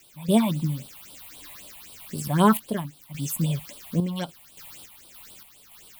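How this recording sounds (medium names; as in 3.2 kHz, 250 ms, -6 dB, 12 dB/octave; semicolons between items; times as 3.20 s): a quantiser's noise floor 8-bit, dither triangular; random-step tremolo, depth 70%; phasing stages 6, 3.8 Hz, lowest notch 380–1900 Hz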